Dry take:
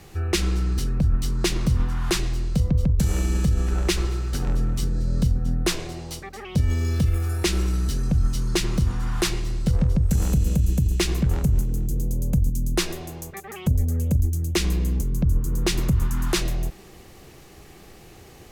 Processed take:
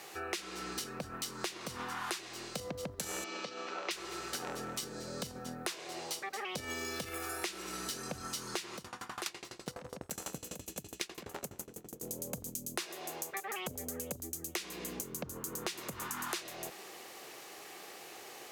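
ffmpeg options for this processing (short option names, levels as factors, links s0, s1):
-filter_complex "[0:a]asettb=1/sr,asplit=3[s0][s1][s2];[s0]atrim=end=3.244[s3];[s1]atrim=start=3.24:end=3.91,asetpts=PTS-STARTPTS,afade=t=in:d=0.004:c=qsin,afade=t=out:st=0.666:d=0.004:c=qsin,highpass=350,equalizer=f=390:t=q:w=4:g=-5,equalizer=f=800:t=q:w=4:g=-5,equalizer=f=1700:t=q:w=4:g=-8,equalizer=f=3400:t=q:w=4:g=-3,lowpass=f=4700:w=0.5412,lowpass=f=4700:w=1.3066[s4];[s2]atrim=start=3.906[s5];[s3][s4]acrossfade=d=0.004:c1=hsin:c2=qsin[s6];[s6][s5]acrossfade=d=0.004:c1=qsin:c2=hsin,asettb=1/sr,asplit=3[s7][s8][s9];[s7]atrim=end=8.764[s10];[s8]atrim=start=8.76:end=12.03,asetpts=PTS-STARTPTS,afade=t=in:d=0.004:c=qsin,afade=t=out:st=3.266:d=0.004:c=qsin,aeval=exprs='val(0)*pow(10,-23*if(lt(mod(12*n/s,1),2*abs(12)/1000),1-mod(12*n/s,1)/(2*abs(12)/1000),(mod(12*n/s,1)-2*abs(12)/1000)/(1-2*abs(12)/1000))/20)':c=same[s11];[s9]atrim=start=12.026[s12];[s10][s11]acrossfade=d=0.004:c1=hsin:c2=qsin[s13];[s13][s12]acrossfade=d=0.004:c1=qsin:c2=hsin,highpass=530,acompressor=threshold=0.0141:ratio=16,volume=1.26"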